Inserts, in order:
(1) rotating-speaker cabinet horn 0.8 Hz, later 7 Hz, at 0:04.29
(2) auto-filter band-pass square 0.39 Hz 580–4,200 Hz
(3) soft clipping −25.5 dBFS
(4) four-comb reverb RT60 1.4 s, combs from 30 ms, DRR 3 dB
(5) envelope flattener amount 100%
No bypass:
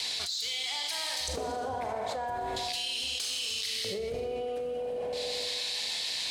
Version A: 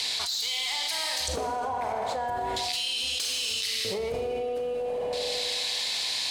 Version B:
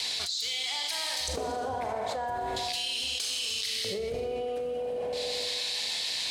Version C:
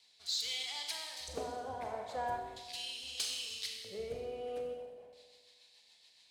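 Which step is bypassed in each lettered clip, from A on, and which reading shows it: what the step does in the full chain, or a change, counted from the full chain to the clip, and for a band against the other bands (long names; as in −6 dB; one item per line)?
1, 250 Hz band −1.5 dB
3, distortion level −24 dB
5, change in crest factor +3.5 dB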